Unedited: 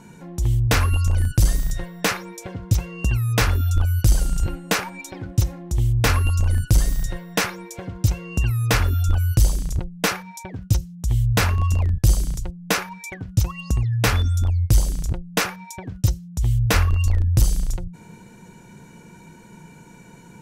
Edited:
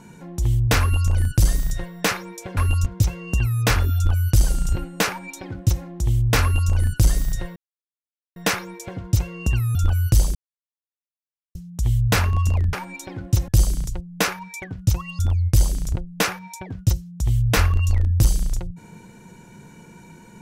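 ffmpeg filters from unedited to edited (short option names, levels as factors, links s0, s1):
-filter_complex "[0:a]asplit=10[s0][s1][s2][s3][s4][s5][s6][s7][s8][s9];[s0]atrim=end=2.572[s10];[s1]atrim=start=6.128:end=6.422[s11];[s2]atrim=start=2.568:end=7.27,asetpts=PTS-STARTPTS,afade=t=out:st=4.698:d=0.004:c=hsin,apad=pad_dur=0.8[s12];[s3]atrim=start=7.27:end=8.662,asetpts=PTS-STARTPTS,afade=t=in:d=0.004:c=hsin[s13];[s4]atrim=start=8.998:end=9.6,asetpts=PTS-STARTPTS,afade=t=out:st=0.598:d=0.004:c=hsin[s14];[s5]atrim=start=9.6:end=10.8,asetpts=PTS-STARTPTS,volume=0[s15];[s6]atrim=start=10.8:end=11.982,asetpts=PTS-STARTPTS,afade=t=in:d=0.004:c=hsin[s16];[s7]atrim=start=4.778:end=5.532[s17];[s8]atrim=start=11.978:end=13.692[s18];[s9]atrim=start=14.358[s19];[s10][s11]acrossfade=d=0.004:c1=hsin:c2=hsin[s20];[s12][s13]concat=n=2:v=0:a=1[s21];[s20][s21]acrossfade=d=0.004:c1=hsin:c2=hsin[s22];[s14][s15][s16]concat=n=3:v=0:a=1[s23];[s22][s23]acrossfade=d=0.004:c1=hsin:c2=hsin[s24];[s24][s17]acrossfade=d=0.004:c1=hsin:c2=hsin[s25];[s25][s18]acrossfade=d=0.004:c1=hsin:c2=hsin[s26];[s26][s19]acrossfade=d=0.004:c1=hsin:c2=hsin"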